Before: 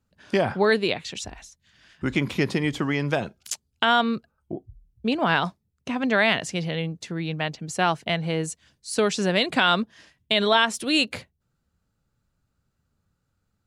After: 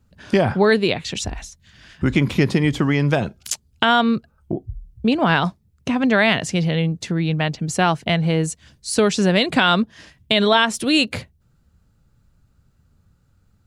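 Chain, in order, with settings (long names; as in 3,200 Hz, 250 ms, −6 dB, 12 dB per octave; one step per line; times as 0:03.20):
low-shelf EQ 190 Hz +9 dB
in parallel at +1.5 dB: downward compressor, threshold −32 dBFS, peak gain reduction 16.5 dB
on the sum: level +1.5 dB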